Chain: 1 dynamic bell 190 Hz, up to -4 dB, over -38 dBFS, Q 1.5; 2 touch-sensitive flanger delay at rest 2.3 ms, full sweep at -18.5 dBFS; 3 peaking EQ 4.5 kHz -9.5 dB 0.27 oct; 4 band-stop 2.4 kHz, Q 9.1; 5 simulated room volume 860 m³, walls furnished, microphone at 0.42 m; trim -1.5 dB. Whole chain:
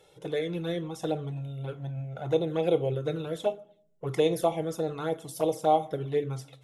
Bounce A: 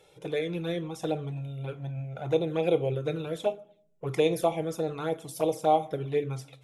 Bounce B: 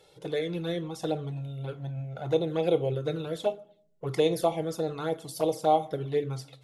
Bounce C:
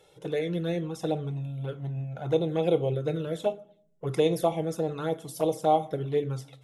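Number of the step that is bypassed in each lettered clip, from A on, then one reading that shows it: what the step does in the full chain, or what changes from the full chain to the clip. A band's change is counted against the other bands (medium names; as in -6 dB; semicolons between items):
4, 2 kHz band +2.0 dB; 3, 4 kHz band +1.5 dB; 1, 125 Hz band +2.5 dB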